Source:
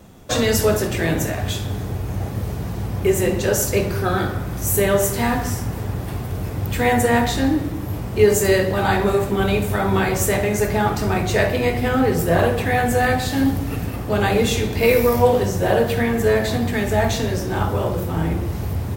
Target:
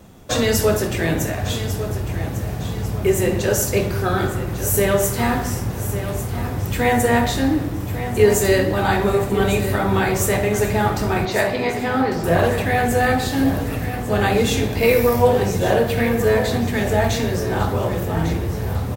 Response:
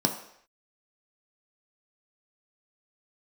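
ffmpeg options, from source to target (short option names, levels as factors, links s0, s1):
-filter_complex "[0:a]asettb=1/sr,asplit=3[s0][s1][s2];[s0]atrim=end=11.254[s3];[s1]atrim=start=11.25:end=12.24,asetpts=PTS-STARTPTS,afade=t=in:d=0.004:c=qsin,afade=t=out:st=0.986:d=0.004:c=qsin,highpass=210,equalizer=f=450:t=q:w=4:g=-5,equalizer=f=890:t=q:w=4:g=4,equalizer=f=2900:t=q:w=4:g=-4,equalizer=f=4700:t=q:w=4:g=4,lowpass=f=5100:w=0.5412,lowpass=f=5100:w=1.3066[s4];[s2]atrim=start=12.236[s5];[s3][s4]acrossfade=d=0.004:c1=hsin:c2=qsin[s6];[s6][s5]acrossfade=d=0.004:c1=qsin:c2=hsin,aecho=1:1:1149|2298|3447|4596:0.266|0.117|0.0515|0.0227"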